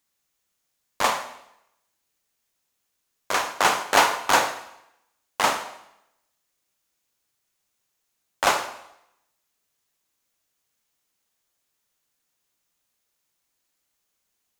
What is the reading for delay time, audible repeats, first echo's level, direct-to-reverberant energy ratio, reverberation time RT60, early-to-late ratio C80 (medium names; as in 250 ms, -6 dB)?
no echo, no echo, no echo, 8.0 dB, 0.80 s, 13.0 dB